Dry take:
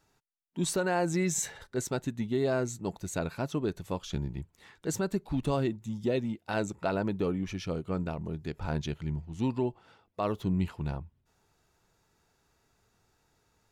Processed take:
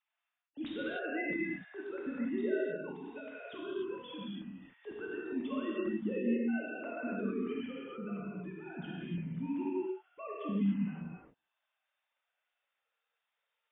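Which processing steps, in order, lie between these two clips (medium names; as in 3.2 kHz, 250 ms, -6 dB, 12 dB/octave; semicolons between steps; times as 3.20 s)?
formants replaced by sine waves; peaking EQ 660 Hz -12.5 dB 2.3 oct; reverberation, pre-delay 3 ms, DRR -6 dB; trim -5 dB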